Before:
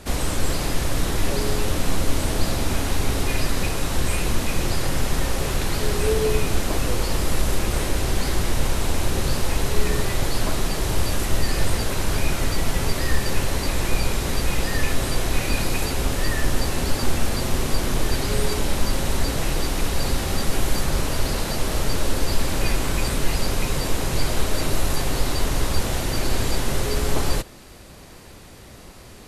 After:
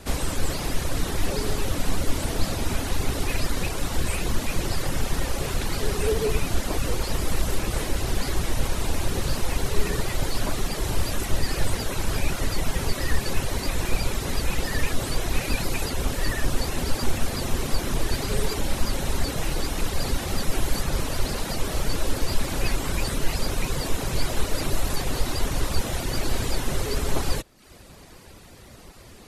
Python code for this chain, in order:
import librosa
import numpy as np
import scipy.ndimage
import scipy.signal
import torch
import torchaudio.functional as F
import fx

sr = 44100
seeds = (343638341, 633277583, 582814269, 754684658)

y = fx.vibrato(x, sr, rate_hz=14.0, depth_cents=74.0)
y = fx.dereverb_blind(y, sr, rt60_s=0.63)
y = y * librosa.db_to_amplitude(-1.5)